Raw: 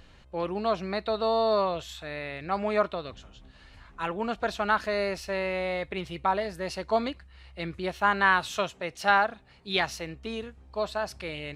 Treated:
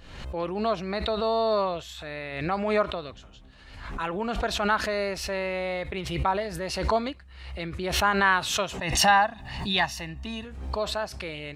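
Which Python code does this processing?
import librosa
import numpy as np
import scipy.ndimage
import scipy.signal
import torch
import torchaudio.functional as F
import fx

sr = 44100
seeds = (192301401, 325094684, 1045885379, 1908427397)

y = fx.comb(x, sr, ms=1.1, depth=0.71, at=(8.78, 10.45))
y = fx.pre_swell(y, sr, db_per_s=53.0)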